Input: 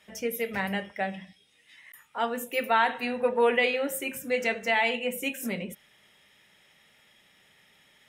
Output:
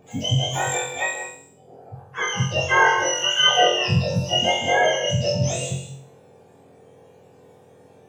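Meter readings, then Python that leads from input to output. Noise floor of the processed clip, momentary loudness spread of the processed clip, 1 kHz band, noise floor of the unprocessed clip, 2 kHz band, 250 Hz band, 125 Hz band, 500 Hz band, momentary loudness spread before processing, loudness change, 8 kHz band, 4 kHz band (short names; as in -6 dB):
-52 dBFS, 13 LU, +7.0 dB, -62 dBFS, +7.0 dB, +3.5 dB, +22.0 dB, +4.0 dB, 10 LU, +7.5 dB, +15.0 dB, +16.5 dB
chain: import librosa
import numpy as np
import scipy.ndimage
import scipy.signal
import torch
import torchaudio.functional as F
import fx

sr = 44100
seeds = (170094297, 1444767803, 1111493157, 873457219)

y = fx.octave_mirror(x, sr, pivot_hz=1200.0)
y = fx.room_flutter(y, sr, wall_m=3.8, rt60_s=0.52)
y = fx.rev_gated(y, sr, seeds[0], gate_ms=220, shape='rising', drr_db=8.5)
y = F.gain(torch.from_numpy(y), 5.5).numpy()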